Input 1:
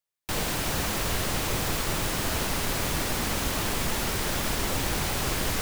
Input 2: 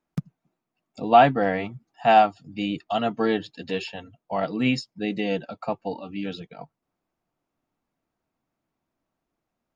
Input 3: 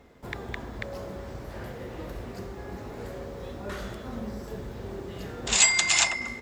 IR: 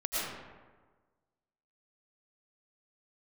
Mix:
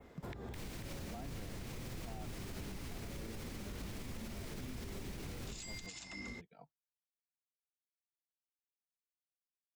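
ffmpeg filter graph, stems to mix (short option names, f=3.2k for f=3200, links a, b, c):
-filter_complex "[0:a]equalizer=f=2.2k:t=o:w=0.46:g=4.5,adelay=250,volume=-6dB[a];[1:a]agate=range=-33dB:threshold=-41dB:ratio=3:detection=peak,volume=-18dB[b];[2:a]volume=-2.5dB[c];[a][c]amix=inputs=2:normalize=0,adynamicequalizer=threshold=0.00891:dfrequency=5000:dqfactor=0.92:tfrequency=5000:tqfactor=0.92:attack=5:release=100:ratio=0.375:range=4:mode=boostabove:tftype=bell,acompressor=threshold=-26dB:ratio=6,volume=0dB[d];[b][d]amix=inputs=2:normalize=0,acrossover=split=360[e][f];[f]acompressor=threshold=-44dB:ratio=4[g];[e][g]amix=inputs=2:normalize=0,alimiter=level_in=12dB:limit=-24dB:level=0:latency=1:release=163,volume=-12dB"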